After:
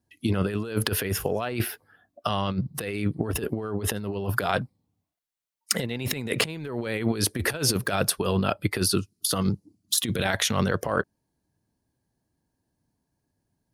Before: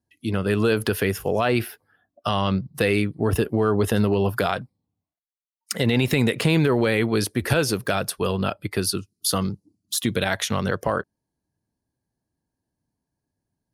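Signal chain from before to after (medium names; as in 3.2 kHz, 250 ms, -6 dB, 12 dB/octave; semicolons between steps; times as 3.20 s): compressor with a negative ratio -25 dBFS, ratio -0.5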